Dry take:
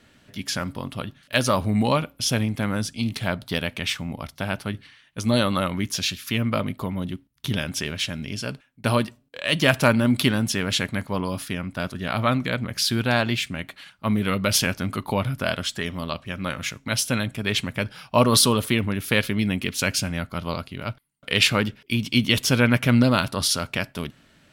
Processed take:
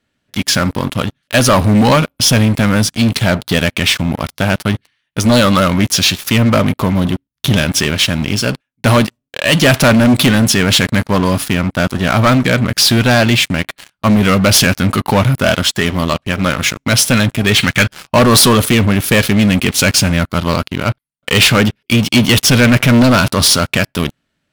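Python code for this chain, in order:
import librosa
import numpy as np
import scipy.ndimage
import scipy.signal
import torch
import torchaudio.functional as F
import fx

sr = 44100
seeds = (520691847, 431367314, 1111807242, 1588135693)

y = fx.spec_box(x, sr, start_s=17.6, length_s=0.26, low_hz=1200.0, high_hz=4700.0, gain_db=11)
y = fx.leveller(y, sr, passes=5)
y = y * 10.0 ** (-3.0 / 20.0)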